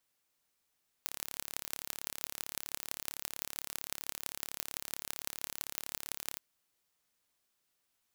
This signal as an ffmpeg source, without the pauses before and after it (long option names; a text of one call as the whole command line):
ffmpeg -f lavfi -i "aevalsrc='0.422*eq(mod(n,1239),0)*(0.5+0.5*eq(mod(n,7434),0))':duration=5.32:sample_rate=44100" out.wav